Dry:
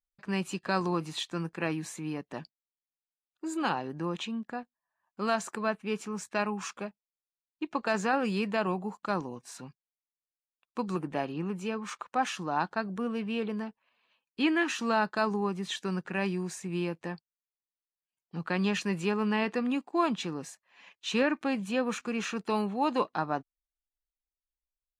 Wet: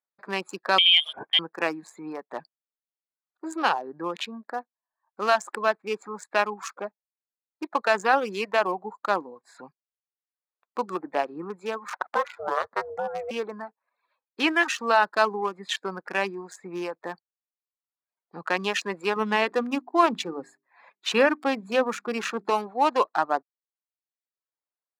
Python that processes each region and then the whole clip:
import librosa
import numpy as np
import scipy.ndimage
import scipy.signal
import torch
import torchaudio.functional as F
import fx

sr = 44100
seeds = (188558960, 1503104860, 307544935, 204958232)

y = fx.chain(x, sr, fx.highpass(hz=61.0, slope=6),
    fx.low_shelf(hz=220.0, db=11.5),
    fx.freq_invert(carrier_hz=3400), at=(0.78, 1.39))
y = fx.chain(y, sr, fx.high_shelf(hz=4600.0, db=-10.5),
    fx.ring_mod(carrier_hz=280.0),
    fx.band_squash(depth_pct=70), at=(11.93, 13.31))
y = fx.chain(y, sr, fx.low_shelf(hz=260.0, db=9.5),
    fx.hum_notches(base_hz=50, count=8), at=(19.16, 22.5))
y = fx.wiener(y, sr, points=15)
y = scipy.signal.sosfilt(scipy.signal.butter(2, 480.0, 'highpass', fs=sr, output='sos'), y)
y = fx.dereverb_blind(y, sr, rt60_s=0.75)
y = y * 10.0 ** (9.0 / 20.0)